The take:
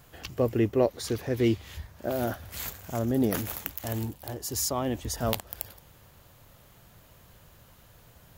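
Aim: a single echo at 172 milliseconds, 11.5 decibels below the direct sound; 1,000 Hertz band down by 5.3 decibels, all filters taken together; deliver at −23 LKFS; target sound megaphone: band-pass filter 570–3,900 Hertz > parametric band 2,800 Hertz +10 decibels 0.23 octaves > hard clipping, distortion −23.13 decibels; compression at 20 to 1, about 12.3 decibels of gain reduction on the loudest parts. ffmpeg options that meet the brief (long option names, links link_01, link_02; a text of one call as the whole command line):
ffmpeg -i in.wav -af "equalizer=frequency=1000:width_type=o:gain=-6.5,acompressor=threshold=-32dB:ratio=20,highpass=570,lowpass=3900,equalizer=frequency=2800:width_type=o:width=0.23:gain=10,aecho=1:1:172:0.266,asoftclip=type=hard:threshold=-27dB,volume=21.5dB" out.wav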